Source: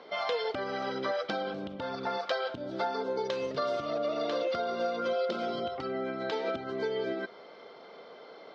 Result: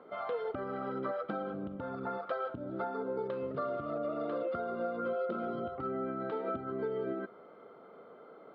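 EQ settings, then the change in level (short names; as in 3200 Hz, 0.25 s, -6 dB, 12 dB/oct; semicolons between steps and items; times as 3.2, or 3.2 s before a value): air absorption 410 m; tilt shelf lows +6.5 dB, about 660 Hz; bell 1300 Hz +13.5 dB 0.27 oct; -4.5 dB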